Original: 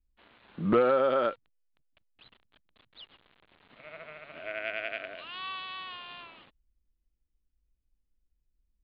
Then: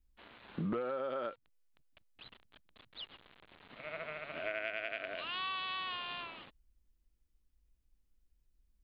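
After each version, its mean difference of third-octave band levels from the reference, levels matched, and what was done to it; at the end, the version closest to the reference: 7.0 dB: compression 10:1, threshold -37 dBFS, peak gain reduction 17.5 dB; trim +3 dB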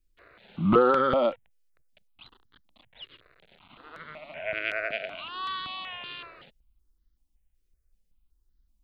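3.0 dB: stepped phaser 5.3 Hz 210–2500 Hz; trim +7.5 dB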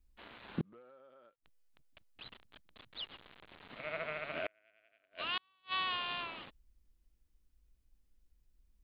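13.0 dB: inverted gate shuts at -29 dBFS, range -41 dB; trim +6 dB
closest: second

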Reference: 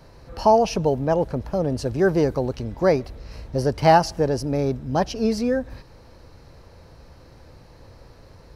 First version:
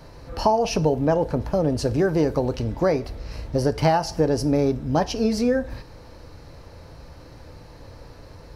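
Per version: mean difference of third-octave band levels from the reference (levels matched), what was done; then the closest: 3.5 dB: compression 6:1, threshold -20 dBFS, peak gain reduction 10 dB; FDN reverb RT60 0.37 s, low-frequency decay 0.8×, high-frequency decay 0.9×, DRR 11 dB; trim +3.5 dB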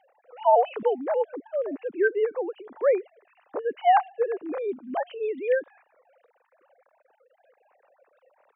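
13.5 dB: formants replaced by sine waves; high-pass 190 Hz 6 dB/octave; trim -4 dB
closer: first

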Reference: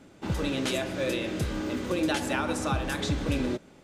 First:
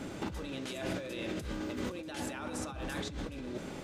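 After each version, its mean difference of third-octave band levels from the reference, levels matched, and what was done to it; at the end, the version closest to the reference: 5.5 dB: compressor with a negative ratio -40 dBFS, ratio -1; trim +1 dB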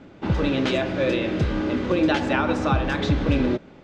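4.0 dB: distance through air 190 m; trim +7.5 dB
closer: second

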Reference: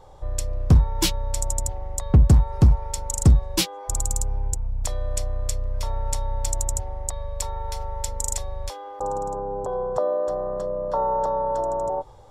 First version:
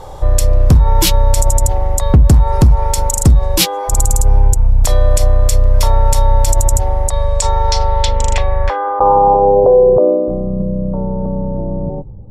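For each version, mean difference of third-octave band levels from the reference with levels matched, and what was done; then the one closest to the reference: 5.5 dB: low-pass sweep 13 kHz -> 200 Hz, 6.97–10.53 s; loudness maximiser +18 dB; trim -1 dB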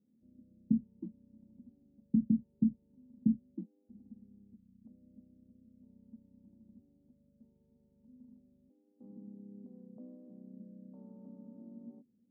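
17.0 dB: local Wiener filter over 41 samples; Butterworth band-pass 230 Hz, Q 5.1; trim +3 dB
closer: first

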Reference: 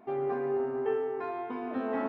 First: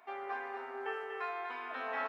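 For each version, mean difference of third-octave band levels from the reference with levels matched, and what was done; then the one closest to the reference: 9.0 dB: high-pass 1.3 kHz 12 dB/octave; delay 242 ms -6 dB; trim +5.5 dB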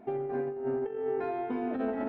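3.0 dB: peaking EQ 1.1 kHz -12 dB 0.24 oct; compressor with a negative ratio -33 dBFS, ratio -0.5; tilt EQ -1.5 dB/octave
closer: second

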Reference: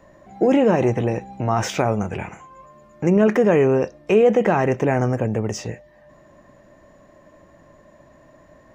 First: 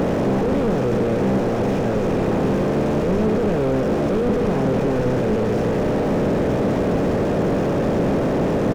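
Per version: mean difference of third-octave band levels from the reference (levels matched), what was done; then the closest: 15.0 dB: spectral levelling over time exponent 0.2; peak limiter -7 dBFS, peak gain reduction 11.5 dB; delay 1165 ms -9.5 dB; slew-rate limiter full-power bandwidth 55 Hz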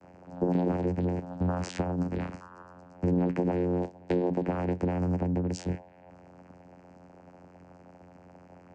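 6.0 dB: treble shelf 5.3 kHz +10.5 dB; band-stop 2.6 kHz, Q 14; compression 12:1, threshold -23 dBFS, peak gain reduction 13 dB; vocoder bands 8, saw 89.2 Hz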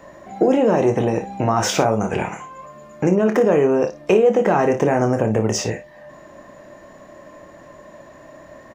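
4.0 dB: dynamic bell 2.2 kHz, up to -6 dB, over -40 dBFS, Q 1.4; compression 6:1, threshold -20 dBFS, peak gain reduction 9.5 dB; bass shelf 170 Hz -9.5 dB; on a send: early reflections 27 ms -8.5 dB, 56 ms -12 dB; on the sum: trim +8.5 dB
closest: third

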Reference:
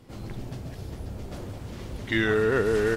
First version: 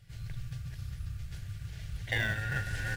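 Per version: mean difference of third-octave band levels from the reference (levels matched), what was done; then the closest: 8.0 dB: brick-wall FIR band-stop 170–1400 Hz; in parallel at -7.5 dB: sample-and-hold 34×; on the sum: trim -4.5 dB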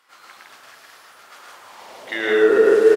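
11.0 dB: loudspeakers at several distances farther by 38 m -2 dB, 55 m -1 dB; high-pass sweep 1.3 kHz -> 400 Hz, 1.51–2.48 s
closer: first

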